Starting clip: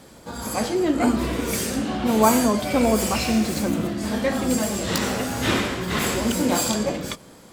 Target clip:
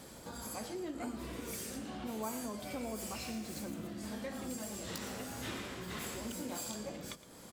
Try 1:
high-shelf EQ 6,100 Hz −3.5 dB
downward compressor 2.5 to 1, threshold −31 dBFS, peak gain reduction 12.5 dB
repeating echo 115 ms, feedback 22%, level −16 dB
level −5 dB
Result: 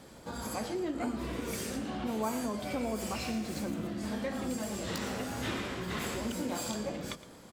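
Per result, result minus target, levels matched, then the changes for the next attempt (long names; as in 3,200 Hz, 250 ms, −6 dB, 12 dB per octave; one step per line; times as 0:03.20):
downward compressor: peak gain reduction −7 dB; 8,000 Hz band −4.0 dB
change: downward compressor 2.5 to 1, threshold −42 dBFS, peak gain reduction 19 dB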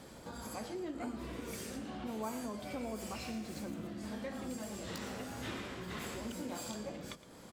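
8,000 Hz band −4.0 dB
change: high-shelf EQ 6,100 Hz +5.5 dB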